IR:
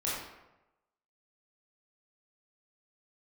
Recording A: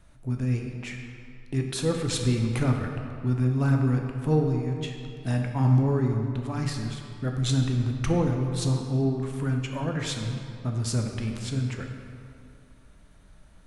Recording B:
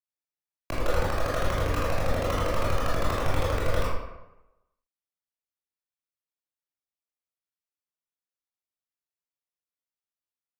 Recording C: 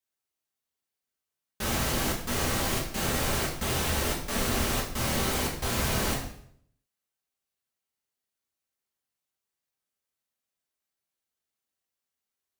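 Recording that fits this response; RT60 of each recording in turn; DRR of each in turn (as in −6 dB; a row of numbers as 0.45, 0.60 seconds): B; 2.5, 1.0, 0.65 seconds; 2.0, −7.5, −4.0 decibels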